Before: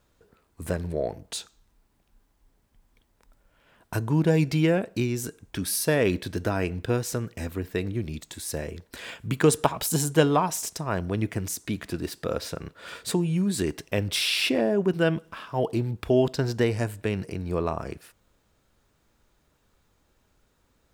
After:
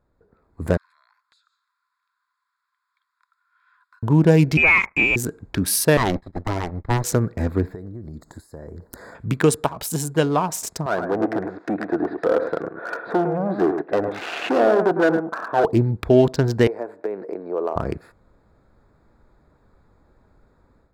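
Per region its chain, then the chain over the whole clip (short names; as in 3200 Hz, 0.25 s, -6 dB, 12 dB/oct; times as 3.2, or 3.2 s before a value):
0.77–4.03 rippled Chebyshev high-pass 1000 Hz, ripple 6 dB + compressor 5:1, threshold -59 dBFS
4.57–5.16 low shelf 420 Hz -11 dB + sample leveller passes 2 + inverted band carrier 2700 Hz
5.97–7.04 minimum comb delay 1 ms + expander -29 dBFS + high shelf 7700 Hz -5 dB
7.74–9.15 Butterworth band-stop 2800 Hz, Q 1.1 + high shelf 6400 Hz +9.5 dB + compressor 12:1, threshold -41 dBFS
10.86–15.65 hard clip -27 dBFS + speaker cabinet 300–2700 Hz, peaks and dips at 320 Hz +6 dB, 470 Hz +4 dB, 720 Hz +9 dB, 1500 Hz +7 dB, 2200 Hz -6 dB + echo 0.106 s -7.5 dB
16.67–17.76 compressor 8:1, threshold -28 dBFS + HPF 420 Hz 24 dB/oct + tilt -4.5 dB/oct
whole clip: Wiener smoothing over 15 samples; AGC gain up to 11.5 dB; gain -1 dB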